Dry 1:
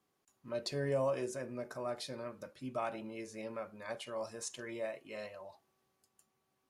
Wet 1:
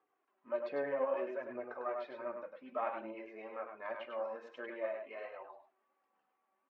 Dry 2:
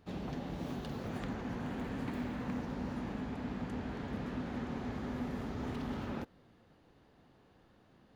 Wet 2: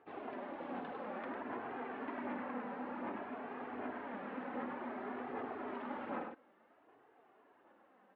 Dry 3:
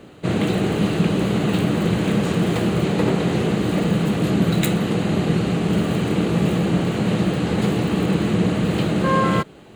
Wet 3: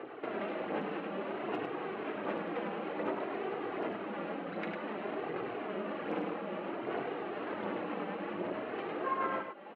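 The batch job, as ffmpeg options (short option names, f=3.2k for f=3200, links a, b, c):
-af "acompressor=threshold=-29dB:ratio=16,lowpass=f=2.7k:w=0.5412,lowpass=f=2.7k:w=1.3066,flanger=delay=0:depth=5.2:regen=33:speed=1.3:shape=sinusoidal,aeval=exprs='0.0631*(cos(1*acos(clip(val(0)/0.0631,-1,1)))-cos(1*PI/2))+0.0158*(cos(2*acos(clip(val(0)/0.0631,-1,1)))-cos(2*PI/2))':c=same,highpass=320,equalizer=f=930:t=o:w=2.6:g=8,aecho=1:1:101:0.531,flanger=delay=2.4:depth=1.6:regen=-36:speed=0.56:shape=triangular,volume=1.5dB"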